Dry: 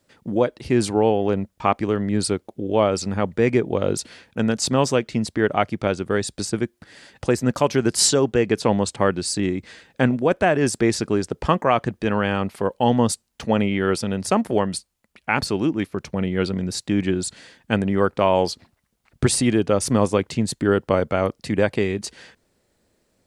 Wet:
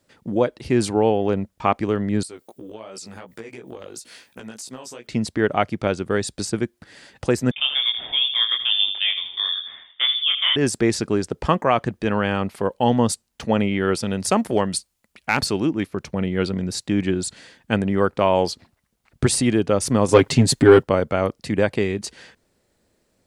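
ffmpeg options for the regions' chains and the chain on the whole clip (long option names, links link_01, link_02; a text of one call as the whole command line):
ffmpeg -i in.wav -filter_complex "[0:a]asettb=1/sr,asplit=3[link_01][link_02][link_03];[link_01]atrim=end=2.234[link_04];[link_02]atrim=start=2.23:end=5.07,asetpts=PTS-STARTPTS,afade=type=in:duration=0.004:curve=qsin,afade=type=out:start_time=2.836:duration=0.004:curve=qsin,aemphasis=mode=production:type=bsi,acompressor=threshold=-29dB:ratio=16:attack=3.2:release=140:knee=1:detection=peak,flanger=delay=15.5:depth=3.4:speed=2.8[link_05];[link_03]atrim=start=5.066[link_06];[link_04][link_05]acrossfade=duration=0.004:curve1=hsin:curve2=qsin[link_07];[link_07][link_06]acrossfade=duration=0.004:curve1=qsin:curve2=hsin,asettb=1/sr,asplit=3[link_08][link_09][link_10];[link_08]atrim=end=7.514[link_11];[link_09]atrim=start=7.51:end=10.56,asetpts=PTS-STARTPTS,afade=type=in:duration=0.004:curve=qsin,afade=type=out:start_time=3.046:duration=0.004:curve=qsin,flanger=delay=19:depth=7.2:speed=1.6,asplit=2[link_12][link_13];[link_13]adelay=80,lowpass=frequency=1200:poles=1,volume=-8dB,asplit=2[link_14][link_15];[link_15]adelay=80,lowpass=frequency=1200:poles=1,volume=0.52,asplit=2[link_16][link_17];[link_17]adelay=80,lowpass=frequency=1200:poles=1,volume=0.52,asplit=2[link_18][link_19];[link_19]adelay=80,lowpass=frequency=1200:poles=1,volume=0.52,asplit=2[link_20][link_21];[link_21]adelay=80,lowpass=frequency=1200:poles=1,volume=0.52,asplit=2[link_22][link_23];[link_23]adelay=80,lowpass=frequency=1200:poles=1,volume=0.52[link_24];[link_12][link_14][link_16][link_18][link_20][link_22][link_24]amix=inputs=7:normalize=0,atrim=end_sample=134505,lowpass=frequency=3100:width_type=q:width=0.5098,lowpass=frequency=3100:width_type=q:width=0.6013,lowpass=frequency=3100:width_type=q:width=0.9,lowpass=frequency=3100:width_type=q:width=2.563,afreqshift=-3700[link_25];[link_10]atrim=start=10.556[link_26];[link_11][link_25]acrossfade=duration=0.004:curve1=hsin:curve2=qsin[link_27];[link_27][link_26]acrossfade=duration=0.004:curve1=qsin:curve2=hsin,asettb=1/sr,asplit=3[link_28][link_29][link_30];[link_28]atrim=end=14.034[link_31];[link_29]atrim=start=14.03:end=15.6,asetpts=PTS-STARTPTS,afade=type=in:duration=0.004:curve=qsin,afade=type=out:start_time=1.566:duration=0.004:curve=qsin,highshelf=frequency=2900:gain=5,asoftclip=type=hard:threshold=-7dB[link_32];[link_30]atrim=start=15.596[link_33];[link_31][link_32]acrossfade=duration=0.004:curve1=hsin:curve2=qsin[link_34];[link_34][link_33]acrossfade=duration=0.004:curve1=qsin:curve2=hsin,asettb=1/sr,asplit=3[link_35][link_36][link_37];[link_35]atrim=end=20.084[link_38];[link_36]atrim=start=20.08:end=20.83,asetpts=PTS-STARTPTS,afade=type=in:duration=0.004:curve=qsin,afade=type=out:start_time=0.746:duration=0.004:curve=qsin,aecho=1:1:7.4:0.66,atrim=end_sample=33075,acontrast=83[link_39];[link_37]atrim=start=20.826[link_40];[link_38][link_39]acrossfade=duration=0.004:curve1=hsin:curve2=qsin[link_41];[link_41][link_40]acrossfade=duration=0.004:curve1=qsin:curve2=hsin" out.wav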